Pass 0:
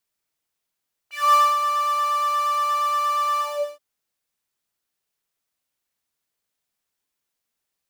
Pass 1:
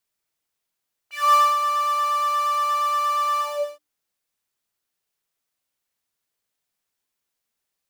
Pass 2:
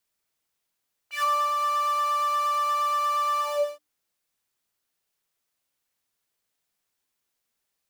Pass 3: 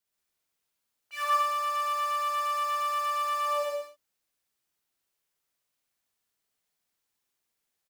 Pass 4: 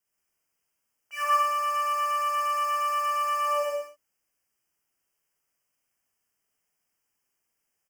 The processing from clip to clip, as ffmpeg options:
ffmpeg -i in.wav -af "bandreject=frequency=60:width_type=h:width=6,bandreject=frequency=120:width_type=h:width=6,bandreject=frequency=180:width_type=h:width=6,bandreject=frequency=240:width_type=h:width=6,bandreject=frequency=300:width_type=h:width=6" out.wav
ffmpeg -i in.wav -filter_complex "[0:a]acrossover=split=500[link_01][link_02];[link_02]acompressor=threshold=-24dB:ratio=10[link_03];[link_01][link_03]amix=inputs=2:normalize=0,volume=1dB" out.wav
ffmpeg -i in.wav -af "aecho=1:1:61.22|125.4|180.8:0.794|1|0.631,volume=-6.5dB" out.wav
ffmpeg -i in.wav -af "asuperstop=centerf=3900:order=12:qfactor=2.5,volume=2.5dB" out.wav

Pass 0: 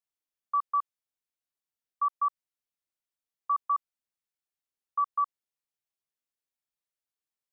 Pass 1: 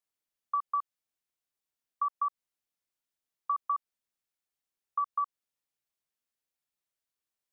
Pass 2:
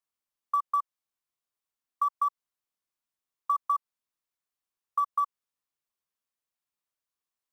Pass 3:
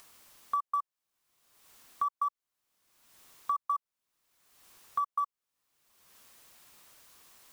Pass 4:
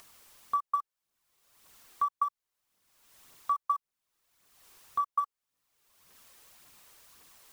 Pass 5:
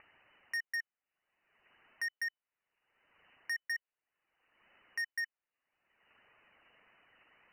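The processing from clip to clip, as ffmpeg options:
ffmpeg -i in.wav -af "acompressor=threshold=-29dB:ratio=6,volume=1.5dB" out.wav
ffmpeg -i in.wav -filter_complex "[0:a]equalizer=frequency=1100:width=2.9:gain=6.5,asplit=2[link_01][link_02];[link_02]acrusher=bits=4:mode=log:mix=0:aa=0.000001,volume=-11dB[link_03];[link_01][link_03]amix=inputs=2:normalize=0,volume=-4.5dB" out.wav
ffmpeg -i in.wav -af "acompressor=mode=upward:threshold=-26dB:ratio=2.5,volume=-4dB" out.wav
ffmpeg -i in.wav -af "aphaser=in_gain=1:out_gain=1:delay=2.6:decay=0.36:speed=1.8:type=triangular" out.wav
ffmpeg -i in.wav -af "lowpass=frequency=2600:width_type=q:width=0.5098,lowpass=frequency=2600:width_type=q:width=0.6013,lowpass=frequency=2600:width_type=q:width=0.9,lowpass=frequency=2600:width_type=q:width=2.563,afreqshift=-3000,volume=32dB,asoftclip=hard,volume=-32dB,volume=-1dB" out.wav

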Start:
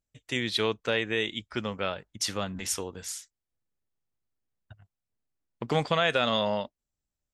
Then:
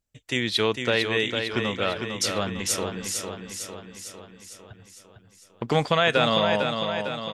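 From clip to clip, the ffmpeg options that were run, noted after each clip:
ffmpeg -i in.wav -af "aecho=1:1:453|906|1359|1812|2265|2718|3171|3624:0.501|0.291|0.169|0.0978|0.0567|0.0329|0.0191|0.0111,volume=4dB" out.wav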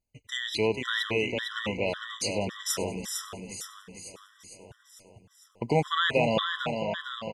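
ffmpeg -i in.wav -filter_complex "[0:a]asplit=5[link_01][link_02][link_03][link_04][link_05];[link_02]adelay=97,afreqshift=-34,volume=-18dB[link_06];[link_03]adelay=194,afreqshift=-68,volume=-23.8dB[link_07];[link_04]adelay=291,afreqshift=-102,volume=-29.7dB[link_08];[link_05]adelay=388,afreqshift=-136,volume=-35.5dB[link_09];[link_01][link_06][link_07][link_08][link_09]amix=inputs=5:normalize=0,afftfilt=real='re*gt(sin(2*PI*1.8*pts/sr)*(1-2*mod(floor(b*sr/1024/1000),2)),0)':imag='im*gt(sin(2*PI*1.8*pts/sr)*(1-2*mod(floor(b*sr/1024/1000),2)),0)':win_size=1024:overlap=0.75,volume=-1.5dB" out.wav

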